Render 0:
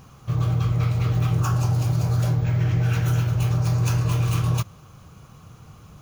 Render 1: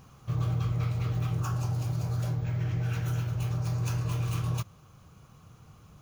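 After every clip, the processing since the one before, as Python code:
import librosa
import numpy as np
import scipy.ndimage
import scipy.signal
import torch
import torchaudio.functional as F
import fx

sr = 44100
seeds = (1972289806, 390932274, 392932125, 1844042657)

y = fx.rider(x, sr, range_db=4, speed_s=2.0)
y = F.gain(torch.from_numpy(y), -8.5).numpy()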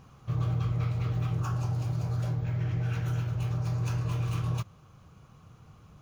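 y = fx.high_shelf(x, sr, hz=6700.0, db=-10.0)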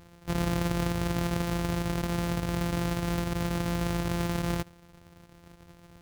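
y = np.r_[np.sort(x[:len(x) // 256 * 256].reshape(-1, 256), axis=1).ravel(), x[len(x) // 256 * 256:]]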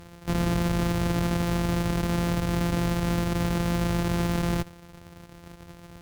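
y = fx.clip_asym(x, sr, top_db=-36.5, bottom_db=-24.0)
y = F.gain(torch.from_numpy(y), 7.0).numpy()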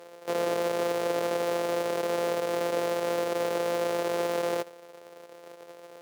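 y = fx.highpass_res(x, sr, hz=490.0, q=4.0)
y = F.gain(torch.from_numpy(y), -2.5).numpy()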